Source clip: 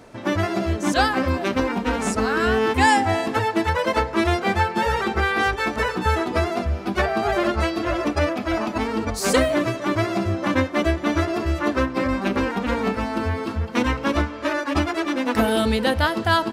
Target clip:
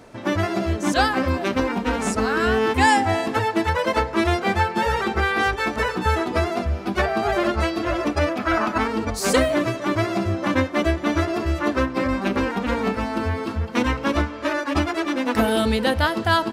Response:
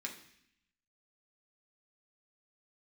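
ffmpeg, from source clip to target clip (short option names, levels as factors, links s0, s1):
-filter_complex "[0:a]asettb=1/sr,asplit=3[s0][s1][s2];[s0]atrim=end=8.394[s3];[s1]atrim=start=8.39:end=8.88,asetpts=PTS-STARTPTS,afade=t=in:d=0.004:c=qsin,afade=t=out:st=0.486:d=0.004:c=qsin,equalizer=f=1400:w=1.6:g=10[s4];[s2]atrim=start=8.876[s5];[s3][s4]acrossfade=d=0.004:c1=hsin:c2=qsin[s6];[s6][s5]acrossfade=d=0.004:c1=qsin:c2=hsin"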